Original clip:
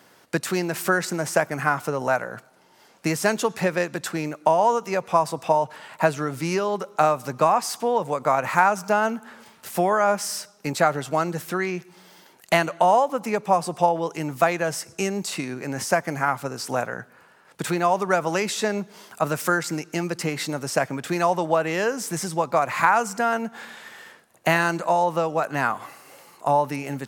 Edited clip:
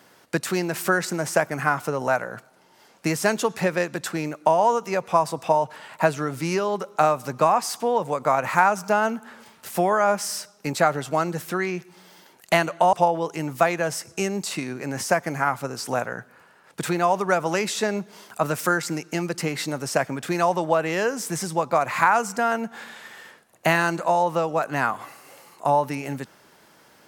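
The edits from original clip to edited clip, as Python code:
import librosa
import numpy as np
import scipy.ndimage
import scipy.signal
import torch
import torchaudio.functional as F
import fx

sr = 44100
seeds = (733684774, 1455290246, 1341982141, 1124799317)

y = fx.edit(x, sr, fx.cut(start_s=12.93, length_s=0.81), tone=tone)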